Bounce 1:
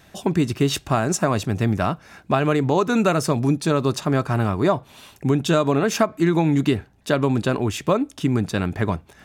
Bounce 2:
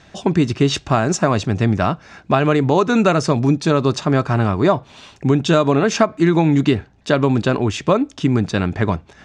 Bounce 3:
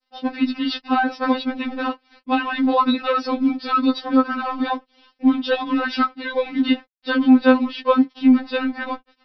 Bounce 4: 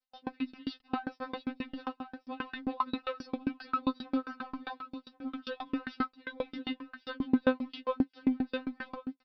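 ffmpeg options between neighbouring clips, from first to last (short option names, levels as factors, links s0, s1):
-af "lowpass=f=6900:w=0.5412,lowpass=f=6900:w=1.3066,volume=1.58"
-af "aresample=11025,aeval=exprs='sgn(val(0))*max(abs(val(0))-0.0106,0)':c=same,aresample=44100,afftfilt=real='re*3.46*eq(mod(b,12),0)':imag='im*3.46*eq(mod(b,12),0)':win_size=2048:overlap=0.75,volume=1.12"
-af "aecho=1:1:1087|2174:0.316|0.0506,aeval=exprs='val(0)*pow(10,-30*if(lt(mod(7.5*n/s,1),2*abs(7.5)/1000),1-mod(7.5*n/s,1)/(2*abs(7.5)/1000),(mod(7.5*n/s,1)-2*abs(7.5)/1000)/(1-2*abs(7.5)/1000))/20)':c=same,volume=0.376"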